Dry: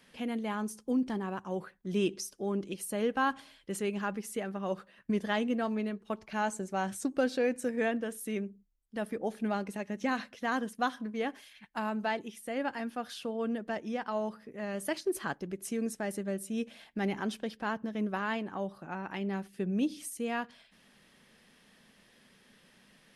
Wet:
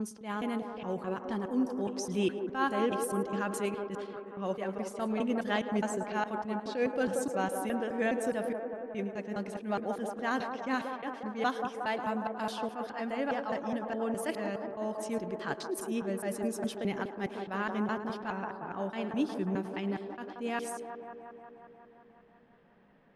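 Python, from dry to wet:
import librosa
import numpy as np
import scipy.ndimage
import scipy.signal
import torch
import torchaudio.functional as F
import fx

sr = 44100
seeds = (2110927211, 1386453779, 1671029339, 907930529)

p1 = fx.block_reorder(x, sr, ms=208.0, group=4)
p2 = p1 + 10.0 ** (-18.0 / 20.0) * np.pad(p1, (int(109 * sr / 1000.0), 0))[:len(p1)]
p3 = fx.env_lowpass(p2, sr, base_hz=1200.0, full_db=-31.5)
p4 = p3 + fx.echo_wet_bandpass(p3, sr, ms=180, feedback_pct=73, hz=620.0, wet_db=-4.5, dry=0)
y = fx.attack_slew(p4, sr, db_per_s=150.0)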